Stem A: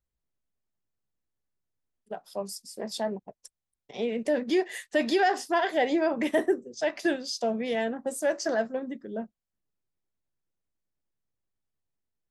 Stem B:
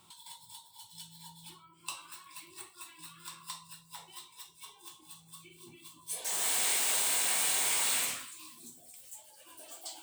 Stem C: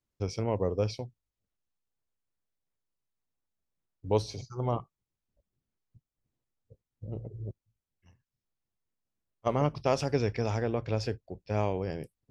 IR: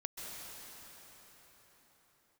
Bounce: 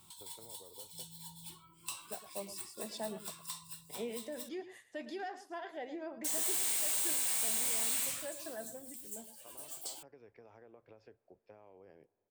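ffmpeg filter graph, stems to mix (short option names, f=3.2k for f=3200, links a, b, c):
-filter_complex "[0:a]adynamicequalizer=threshold=0.0126:dfrequency=2000:dqfactor=0.7:tfrequency=2000:tqfactor=0.7:attack=5:release=100:ratio=0.375:range=2:mode=cutabove:tftype=highshelf,volume=-9.5dB,afade=t=out:st=4.03:d=0.28:silence=0.375837,asplit=3[a][b][c];[b]volume=-13dB[d];[1:a]lowshelf=f=150:g=12,asoftclip=type=tanh:threshold=-26dB,highshelf=f=6.2k:g=10,volume=-4.5dB,asplit=3[e][f][g];[e]atrim=end=4.49,asetpts=PTS-STARTPTS,afade=t=out:st=4.486:d=0.004:c=hsin[h];[f]atrim=start=4.49:end=6.24,asetpts=PTS-STARTPTS,volume=0[i];[g]atrim=start=6.24,asetpts=PTS-STARTPTS,afade=t=in:d=0.004:c=hsin[j];[h][i][j]concat=n=3:v=0:a=1[k];[2:a]acrossover=split=270 2400:gain=0.178 1 0.2[l][m][n];[l][m][n]amix=inputs=3:normalize=0,alimiter=level_in=1.5dB:limit=-24dB:level=0:latency=1:release=266,volume=-1.5dB,acompressor=threshold=-42dB:ratio=6,volume=-12.5dB,asplit=2[o][p];[p]volume=-23.5dB[q];[c]apad=whole_len=542548[r];[o][r]sidechaincompress=threshold=-55dB:ratio=8:attack=16:release=362[s];[3:a]atrim=start_sample=2205[t];[q][t]afir=irnorm=-1:irlink=0[u];[d]aecho=0:1:111:1[v];[a][k][s][u][v]amix=inputs=5:normalize=0,acompressor=threshold=-36dB:ratio=1.5"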